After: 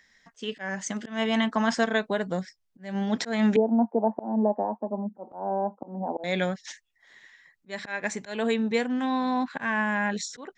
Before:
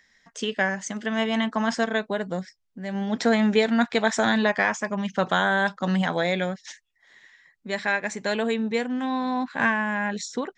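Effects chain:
0:03.56–0:06.24: Chebyshev band-pass filter 210–910 Hz, order 4
volume swells 204 ms

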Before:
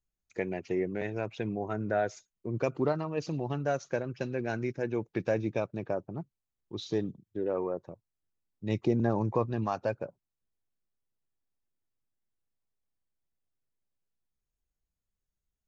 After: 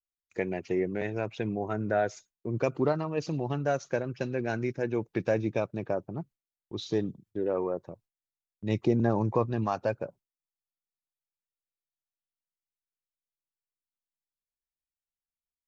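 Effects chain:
noise gate with hold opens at −51 dBFS
level +2 dB

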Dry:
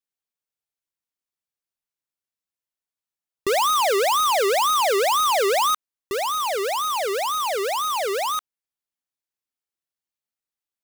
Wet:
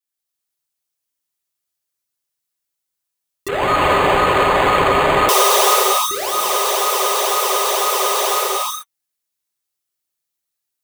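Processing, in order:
high-shelf EQ 4,300 Hz +9 dB
notch comb filter 230 Hz
reverb whose tail is shaped and stops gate 450 ms flat, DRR −7 dB
0:03.48–0:05.29: linearly interpolated sample-rate reduction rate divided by 8×
level −2 dB

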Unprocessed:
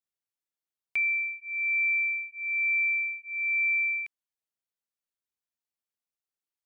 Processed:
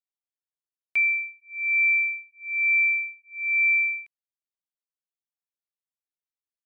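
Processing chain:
expander for the loud parts 2.5 to 1, over −37 dBFS
level +5.5 dB

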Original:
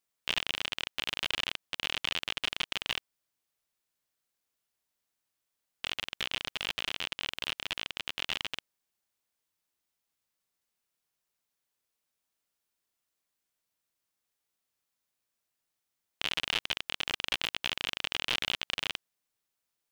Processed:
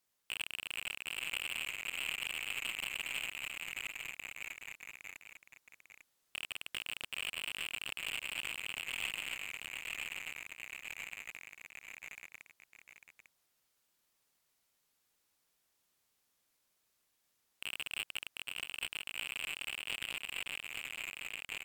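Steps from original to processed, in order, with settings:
fade-out on the ending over 2.91 s
in parallel at −3 dB: brickwall limiter −23 dBFS, peak gain reduction 12 dB
on the sum: gain into a clipping stage and back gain 27 dB
speed change −8%
delay with pitch and tempo change per echo 437 ms, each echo −1 semitone, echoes 3
on a send: single-tap delay 848 ms −9 dB
on the sum: level −2 dB

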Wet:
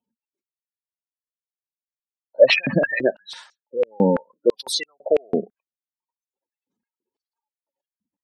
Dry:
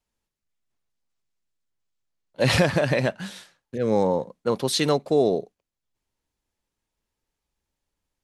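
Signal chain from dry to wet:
gate on every frequency bin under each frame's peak −15 dB strong
high-pass on a step sequencer 6 Hz 220–6,600 Hz
level +2 dB

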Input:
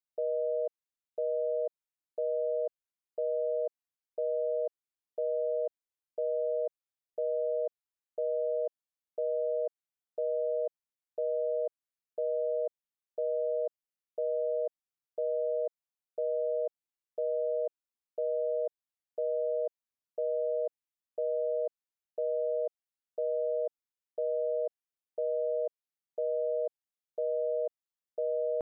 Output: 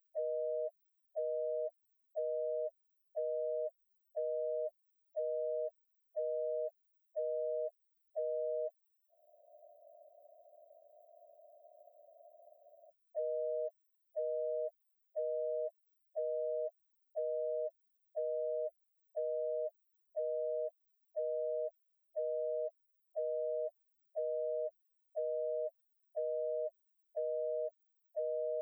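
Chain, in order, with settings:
stylus tracing distortion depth 0.19 ms
spectral tilt +5.5 dB per octave
spectral peaks only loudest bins 2
in parallel at +0.5 dB: compressor whose output falls as the input rises −53 dBFS, ratio −1
on the sum: frozen spectrum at 0:09.12, 3.77 s
multiband upward and downward compressor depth 70%
level +1.5 dB

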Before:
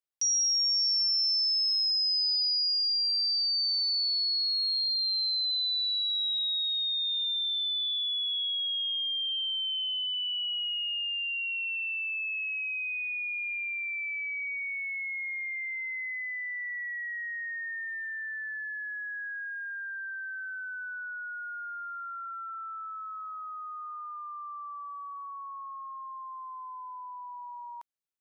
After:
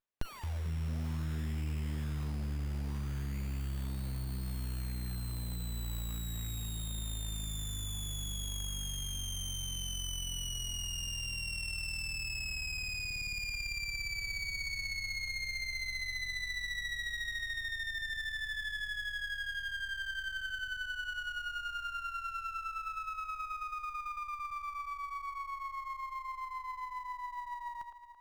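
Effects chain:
delay that swaps between a low-pass and a high-pass 111 ms, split 2,100 Hz, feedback 70%, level −6 dB
floating-point word with a short mantissa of 4 bits
windowed peak hold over 9 samples

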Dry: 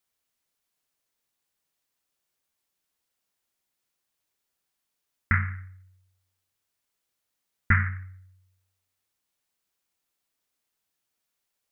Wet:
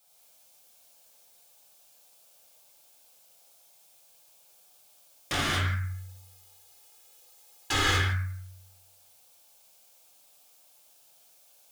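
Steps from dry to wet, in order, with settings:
flat-topped bell 660 Hz +11 dB 1 octave
downward compressor 6 to 1, threshold −26 dBFS, peak gain reduction 10 dB
high-shelf EQ 2,500 Hz +10.5 dB
notch filter 1,900 Hz, Q 5.9
wave folding −30.5 dBFS
0:05.68–0:07.87: comb filter 2.4 ms, depth 85%
reverb whose tail is shaped and stops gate 270 ms flat, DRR −6.5 dB
level +5 dB

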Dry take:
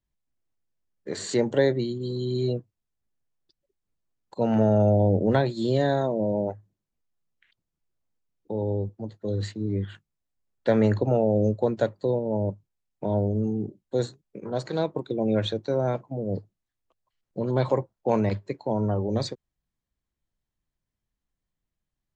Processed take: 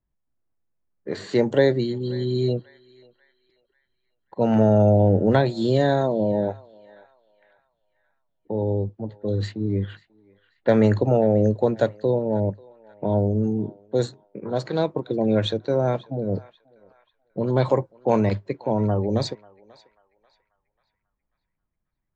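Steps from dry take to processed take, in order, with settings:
low-pass that shuts in the quiet parts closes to 1,500 Hz, open at −19.5 dBFS
feedback echo with a band-pass in the loop 539 ms, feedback 45%, band-pass 1,800 Hz, level −18.5 dB
level +3.5 dB

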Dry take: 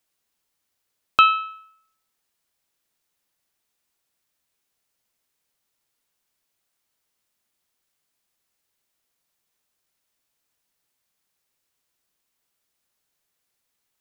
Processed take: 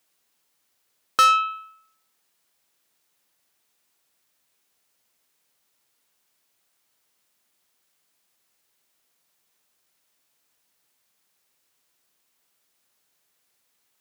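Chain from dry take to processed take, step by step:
soft clipping −18 dBFS, distortion −7 dB
high-pass filter 150 Hz 6 dB per octave
level +6 dB

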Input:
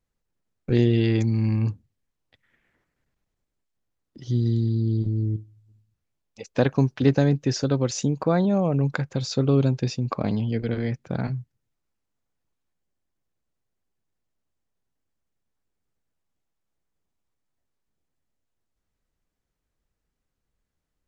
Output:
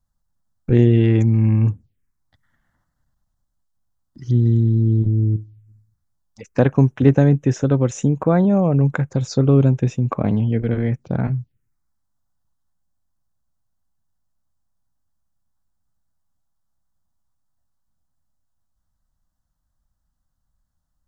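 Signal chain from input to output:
phaser swept by the level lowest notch 410 Hz, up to 4,600 Hz, full sweep at −24 dBFS
low-shelf EQ 160 Hz +5 dB
level +4 dB

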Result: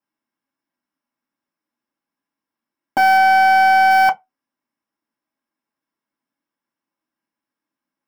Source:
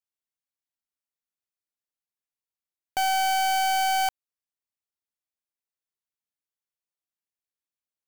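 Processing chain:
0:03.17–0:03.91: high-shelf EQ 8,800 Hz −7 dB
convolution reverb, pre-delay 3 ms, DRR −6 dB

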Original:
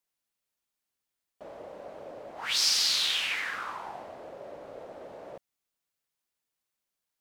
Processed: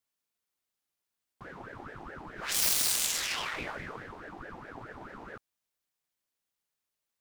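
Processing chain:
phase distortion by the signal itself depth 0.26 ms
ring modulator whose carrier an LFO sweeps 660 Hz, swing 70%, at 4.7 Hz
level +2 dB

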